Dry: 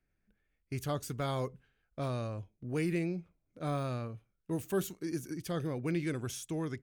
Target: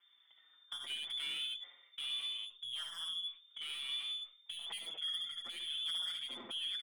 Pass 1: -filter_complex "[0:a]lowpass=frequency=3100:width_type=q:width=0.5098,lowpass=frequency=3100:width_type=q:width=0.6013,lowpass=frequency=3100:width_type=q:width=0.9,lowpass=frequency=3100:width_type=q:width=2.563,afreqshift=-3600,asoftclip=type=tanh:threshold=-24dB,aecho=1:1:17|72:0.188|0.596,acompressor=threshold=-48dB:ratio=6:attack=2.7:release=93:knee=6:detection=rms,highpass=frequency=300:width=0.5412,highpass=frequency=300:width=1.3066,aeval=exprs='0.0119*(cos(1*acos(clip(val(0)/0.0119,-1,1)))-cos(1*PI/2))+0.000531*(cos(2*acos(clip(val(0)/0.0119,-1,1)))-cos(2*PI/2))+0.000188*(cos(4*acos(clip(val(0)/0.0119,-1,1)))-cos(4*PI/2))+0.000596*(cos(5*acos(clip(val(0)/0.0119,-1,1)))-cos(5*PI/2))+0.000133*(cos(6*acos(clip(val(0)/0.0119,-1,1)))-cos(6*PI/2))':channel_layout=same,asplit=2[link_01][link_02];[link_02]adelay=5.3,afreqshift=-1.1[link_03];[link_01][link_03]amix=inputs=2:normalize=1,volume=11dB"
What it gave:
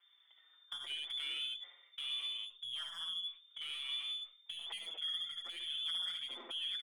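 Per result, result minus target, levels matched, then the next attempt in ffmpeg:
soft clipping: distortion −8 dB; 250 Hz band −4.0 dB
-filter_complex "[0:a]lowpass=frequency=3100:width_type=q:width=0.5098,lowpass=frequency=3100:width_type=q:width=0.6013,lowpass=frequency=3100:width_type=q:width=0.9,lowpass=frequency=3100:width_type=q:width=2.563,afreqshift=-3600,asoftclip=type=tanh:threshold=-30dB,aecho=1:1:17|72:0.188|0.596,acompressor=threshold=-48dB:ratio=6:attack=2.7:release=93:knee=6:detection=rms,highpass=frequency=300:width=0.5412,highpass=frequency=300:width=1.3066,aeval=exprs='0.0119*(cos(1*acos(clip(val(0)/0.0119,-1,1)))-cos(1*PI/2))+0.000531*(cos(2*acos(clip(val(0)/0.0119,-1,1)))-cos(2*PI/2))+0.000188*(cos(4*acos(clip(val(0)/0.0119,-1,1)))-cos(4*PI/2))+0.000596*(cos(5*acos(clip(val(0)/0.0119,-1,1)))-cos(5*PI/2))+0.000133*(cos(6*acos(clip(val(0)/0.0119,-1,1)))-cos(6*PI/2))':channel_layout=same,asplit=2[link_01][link_02];[link_02]adelay=5.3,afreqshift=-1.1[link_03];[link_01][link_03]amix=inputs=2:normalize=1,volume=11dB"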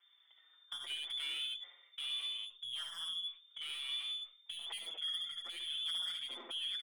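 250 Hz band −4.0 dB
-filter_complex "[0:a]lowpass=frequency=3100:width_type=q:width=0.5098,lowpass=frequency=3100:width_type=q:width=0.6013,lowpass=frequency=3100:width_type=q:width=0.9,lowpass=frequency=3100:width_type=q:width=2.563,afreqshift=-3600,asoftclip=type=tanh:threshold=-30dB,aecho=1:1:17|72:0.188|0.596,acompressor=threshold=-48dB:ratio=6:attack=2.7:release=93:knee=6:detection=rms,highpass=frequency=140:width=0.5412,highpass=frequency=140:width=1.3066,aeval=exprs='0.0119*(cos(1*acos(clip(val(0)/0.0119,-1,1)))-cos(1*PI/2))+0.000531*(cos(2*acos(clip(val(0)/0.0119,-1,1)))-cos(2*PI/2))+0.000188*(cos(4*acos(clip(val(0)/0.0119,-1,1)))-cos(4*PI/2))+0.000596*(cos(5*acos(clip(val(0)/0.0119,-1,1)))-cos(5*PI/2))+0.000133*(cos(6*acos(clip(val(0)/0.0119,-1,1)))-cos(6*PI/2))':channel_layout=same,asplit=2[link_01][link_02];[link_02]adelay=5.3,afreqshift=-1.1[link_03];[link_01][link_03]amix=inputs=2:normalize=1,volume=11dB"

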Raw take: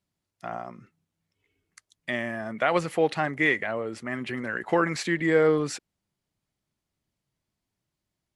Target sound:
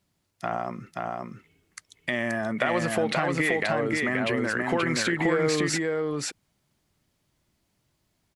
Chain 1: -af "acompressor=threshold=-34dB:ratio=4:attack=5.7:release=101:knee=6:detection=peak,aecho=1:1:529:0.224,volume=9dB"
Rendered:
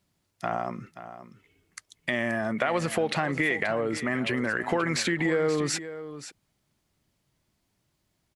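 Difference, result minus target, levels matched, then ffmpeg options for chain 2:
echo-to-direct −10.5 dB
-af "acompressor=threshold=-34dB:ratio=4:attack=5.7:release=101:knee=6:detection=peak,aecho=1:1:529:0.75,volume=9dB"

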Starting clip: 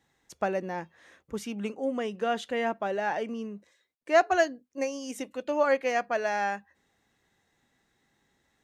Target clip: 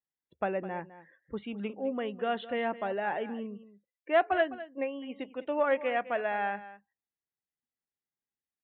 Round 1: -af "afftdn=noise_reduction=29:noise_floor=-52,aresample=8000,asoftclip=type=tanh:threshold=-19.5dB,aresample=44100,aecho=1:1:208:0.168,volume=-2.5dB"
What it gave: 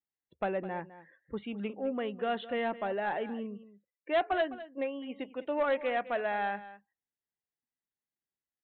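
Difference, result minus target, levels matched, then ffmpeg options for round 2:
soft clipping: distortion +12 dB
-af "afftdn=noise_reduction=29:noise_floor=-52,aresample=8000,asoftclip=type=tanh:threshold=-10.5dB,aresample=44100,aecho=1:1:208:0.168,volume=-2.5dB"

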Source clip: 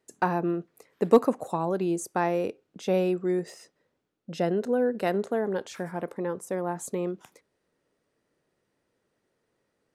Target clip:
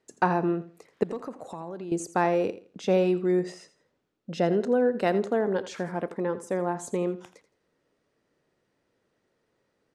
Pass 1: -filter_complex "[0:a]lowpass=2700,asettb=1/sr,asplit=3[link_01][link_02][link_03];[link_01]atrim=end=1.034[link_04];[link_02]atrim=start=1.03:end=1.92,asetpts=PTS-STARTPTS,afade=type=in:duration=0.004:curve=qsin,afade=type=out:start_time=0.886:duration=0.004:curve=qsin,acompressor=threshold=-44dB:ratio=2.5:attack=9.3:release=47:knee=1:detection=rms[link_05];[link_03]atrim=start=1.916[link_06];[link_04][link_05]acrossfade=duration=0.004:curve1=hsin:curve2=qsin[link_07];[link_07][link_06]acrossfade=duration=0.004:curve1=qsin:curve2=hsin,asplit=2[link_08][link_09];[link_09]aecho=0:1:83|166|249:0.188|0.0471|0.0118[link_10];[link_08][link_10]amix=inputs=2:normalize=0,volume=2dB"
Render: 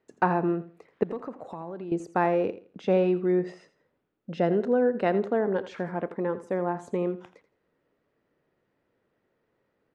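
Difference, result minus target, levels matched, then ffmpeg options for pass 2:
8,000 Hz band −15.0 dB
-filter_complex "[0:a]lowpass=7200,asettb=1/sr,asplit=3[link_01][link_02][link_03];[link_01]atrim=end=1.034[link_04];[link_02]atrim=start=1.03:end=1.92,asetpts=PTS-STARTPTS,afade=type=in:duration=0.004:curve=qsin,afade=type=out:start_time=0.886:duration=0.004:curve=qsin,acompressor=threshold=-44dB:ratio=2.5:attack=9.3:release=47:knee=1:detection=rms[link_05];[link_03]atrim=start=1.916[link_06];[link_04][link_05]acrossfade=duration=0.004:curve1=hsin:curve2=qsin[link_07];[link_07][link_06]acrossfade=duration=0.004:curve1=qsin:curve2=hsin,asplit=2[link_08][link_09];[link_09]aecho=0:1:83|166|249:0.188|0.0471|0.0118[link_10];[link_08][link_10]amix=inputs=2:normalize=0,volume=2dB"

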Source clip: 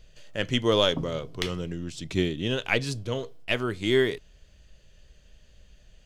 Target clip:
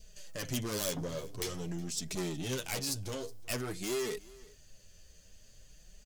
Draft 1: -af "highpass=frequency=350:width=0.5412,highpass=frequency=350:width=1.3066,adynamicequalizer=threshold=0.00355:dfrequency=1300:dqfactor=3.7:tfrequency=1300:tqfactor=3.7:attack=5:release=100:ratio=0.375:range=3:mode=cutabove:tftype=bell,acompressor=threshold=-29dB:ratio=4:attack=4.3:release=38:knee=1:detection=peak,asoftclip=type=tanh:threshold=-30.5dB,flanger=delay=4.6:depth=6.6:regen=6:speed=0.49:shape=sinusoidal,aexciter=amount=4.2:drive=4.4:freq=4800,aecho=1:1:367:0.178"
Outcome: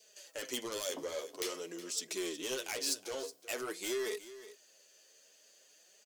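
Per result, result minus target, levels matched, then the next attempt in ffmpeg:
downward compressor: peak gain reduction +9.5 dB; echo-to-direct +7 dB; 250 Hz band −4.0 dB
-af "highpass=frequency=350:width=0.5412,highpass=frequency=350:width=1.3066,adynamicequalizer=threshold=0.00355:dfrequency=1300:dqfactor=3.7:tfrequency=1300:tqfactor=3.7:attack=5:release=100:ratio=0.375:range=3:mode=cutabove:tftype=bell,asoftclip=type=tanh:threshold=-30.5dB,flanger=delay=4.6:depth=6.6:regen=6:speed=0.49:shape=sinusoidal,aexciter=amount=4.2:drive=4.4:freq=4800,aecho=1:1:367:0.178"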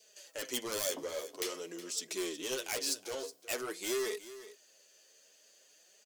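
echo-to-direct +7 dB; 250 Hz band −4.5 dB
-af "highpass=frequency=350:width=0.5412,highpass=frequency=350:width=1.3066,adynamicequalizer=threshold=0.00355:dfrequency=1300:dqfactor=3.7:tfrequency=1300:tqfactor=3.7:attack=5:release=100:ratio=0.375:range=3:mode=cutabove:tftype=bell,asoftclip=type=tanh:threshold=-30.5dB,flanger=delay=4.6:depth=6.6:regen=6:speed=0.49:shape=sinusoidal,aexciter=amount=4.2:drive=4.4:freq=4800,aecho=1:1:367:0.0794"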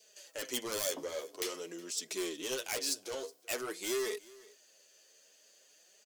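250 Hz band −4.5 dB
-af "adynamicequalizer=threshold=0.00355:dfrequency=1300:dqfactor=3.7:tfrequency=1300:tqfactor=3.7:attack=5:release=100:ratio=0.375:range=3:mode=cutabove:tftype=bell,asoftclip=type=tanh:threshold=-30.5dB,flanger=delay=4.6:depth=6.6:regen=6:speed=0.49:shape=sinusoidal,aexciter=amount=4.2:drive=4.4:freq=4800,aecho=1:1:367:0.0794"

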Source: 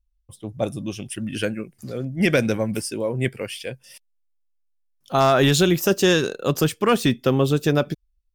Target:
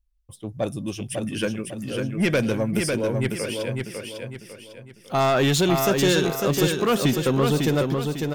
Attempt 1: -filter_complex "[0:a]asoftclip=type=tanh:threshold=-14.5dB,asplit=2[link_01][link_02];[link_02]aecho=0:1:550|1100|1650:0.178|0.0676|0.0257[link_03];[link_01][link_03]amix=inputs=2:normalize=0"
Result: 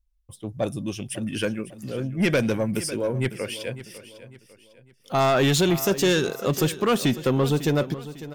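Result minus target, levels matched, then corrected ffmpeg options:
echo-to-direct −10.5 dB
-filter_complex "[0:a]asoftclip=type=tanh:threshold=-14.5dB,asplit=2[link_01][link_02];[link_02]aecho=0:1:550|1100|1650|2200|2750:0.596|0.226|0.086|0.0327|0.0124[link_03];[link_01][link_03]amix=inputs=2:normalize=0"

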